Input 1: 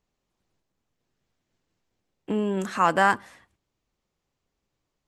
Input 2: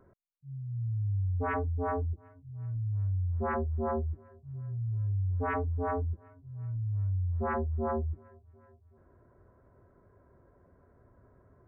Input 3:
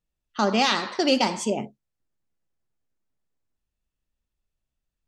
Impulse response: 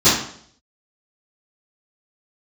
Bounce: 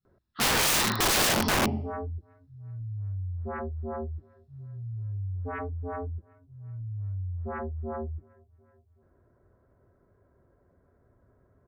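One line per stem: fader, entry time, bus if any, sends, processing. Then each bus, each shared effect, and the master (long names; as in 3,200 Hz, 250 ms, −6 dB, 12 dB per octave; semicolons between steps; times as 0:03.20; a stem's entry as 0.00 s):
muted
−3.0 dB, 0.05 s, no send, parametric band 1,000 Hz −4.5 dB 0.21 octaves
−10.5 dB, 0.00 s, send −8.5 dB, Chebyshev low-pass with heavy ripple 5,500 Hz, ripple 9 dB; low-shelf EQ 300 Hz +9 dB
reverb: on, RT60 0.60 s, pre-delay 3 ms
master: wrap-around overflow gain 19 dB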